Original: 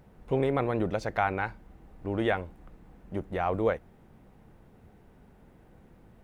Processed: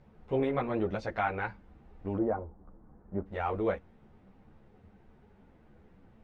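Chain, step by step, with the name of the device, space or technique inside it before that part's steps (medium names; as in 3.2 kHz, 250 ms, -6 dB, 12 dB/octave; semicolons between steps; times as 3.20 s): string-machine ensemble chorus (three-phase chorus; low-pass 4.8 kHz 12 dB/octave); 2.17–3.25 s: low-pass 1 kHz -> 1.6 kHz 24 dB/octave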